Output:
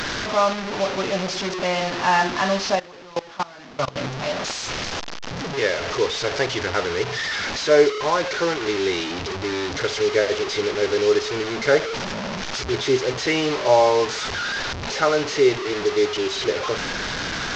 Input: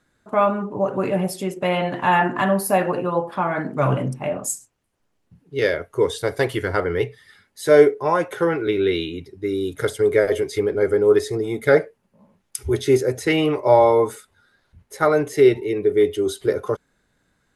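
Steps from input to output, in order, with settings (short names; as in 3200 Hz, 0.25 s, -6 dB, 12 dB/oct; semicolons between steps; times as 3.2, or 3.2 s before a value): delta modulation 32 kbps, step -19 dBFS; low shelf 360 Hz -7 dB; 2.75–3.96 level quantiser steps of 21 dB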